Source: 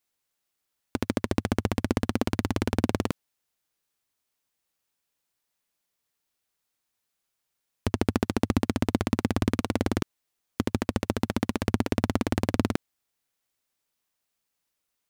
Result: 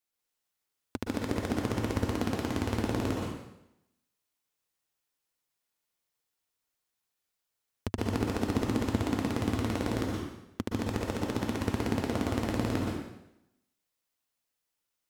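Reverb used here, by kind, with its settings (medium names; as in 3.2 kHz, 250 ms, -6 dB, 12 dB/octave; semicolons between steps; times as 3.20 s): plate-style reverb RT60 0.86 s, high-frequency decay 0.95×, pre-delay 110 ms, DRR -1.5 dB; trim -7 dB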